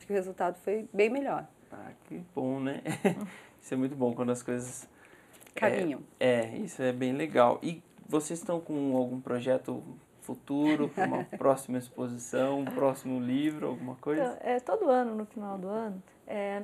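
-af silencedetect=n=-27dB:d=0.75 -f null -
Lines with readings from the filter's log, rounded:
silence_start: 1.39
silence_end: 2.37 | silence_duration: 0.99
silence_start: 4.59
silence_end: 5.57 | silence_duration: 0.99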